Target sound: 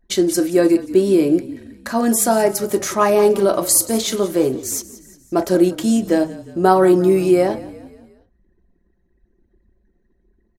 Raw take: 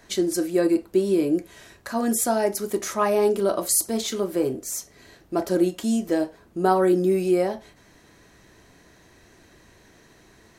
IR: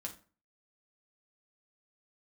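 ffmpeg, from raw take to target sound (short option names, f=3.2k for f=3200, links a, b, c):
-filter_complex "[0:a]anlmdn=0.158,asplit=5[a][b][c][d][e];[b]adelay=177,afreqshift=-32,volume=-17.5dB[f];[c]adelay=354,afreqshift=-64,volume=-23.2dB[g];[d]adelay=531,afreqshift=-96,volume=-28.9dB[h];[e]adelay=708,afreqshift=-128,volume=-34.5dB[i];[a][f][g][h][i]amix=inputs=5:normalize=0,volume=6.5dB"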